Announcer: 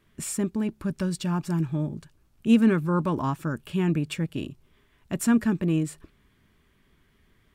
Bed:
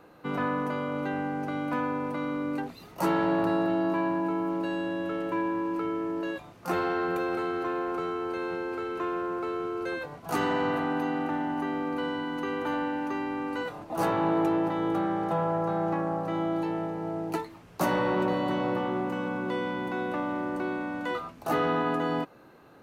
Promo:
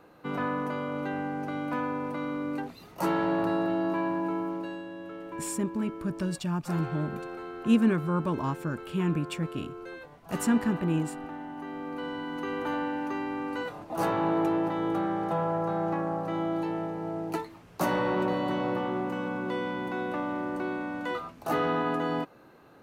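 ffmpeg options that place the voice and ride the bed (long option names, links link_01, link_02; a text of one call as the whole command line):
ffmpeg -i stem1.wav -i stem2.wav -filter_complex "[0:a]adelay=5200,volume=-3.5dB[link_01];[1:a]volume=7dB,afade=type=out:start_time=4.36:duration=0.49:silence=0.398107,afade=type=in:start_time=11.54:duration=1.06:silence=0.375837[link_02];[link_01][link_02]amix=inputs=2:normalize=0" out.wav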